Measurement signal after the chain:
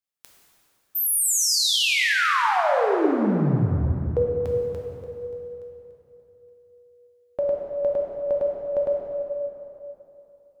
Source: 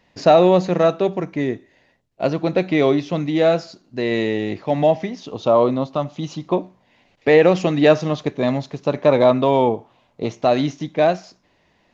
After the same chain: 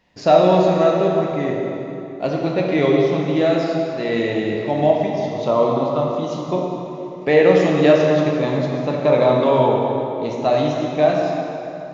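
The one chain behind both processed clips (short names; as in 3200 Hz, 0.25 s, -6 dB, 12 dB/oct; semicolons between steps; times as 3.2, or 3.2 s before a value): plate-style reverb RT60 3.1 s, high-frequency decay 0.7×, DRR -2 dB; gain -3.5 dB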